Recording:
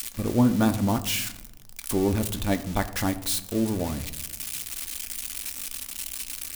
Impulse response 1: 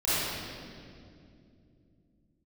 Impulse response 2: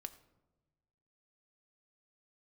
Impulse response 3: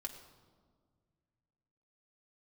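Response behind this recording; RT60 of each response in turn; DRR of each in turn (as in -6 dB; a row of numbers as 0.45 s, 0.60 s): 2; 2.6 s, 1.1 s, 1.7 s; -13.5 dB, 8.0 dB, 1.5 dB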